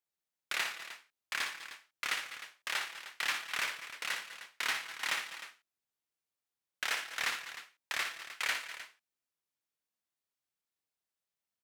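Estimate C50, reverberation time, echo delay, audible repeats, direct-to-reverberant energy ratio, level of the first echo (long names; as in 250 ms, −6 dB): no reverb audible, no reverb audible, 60 ms, 3, no reverb audible, −7.0 dB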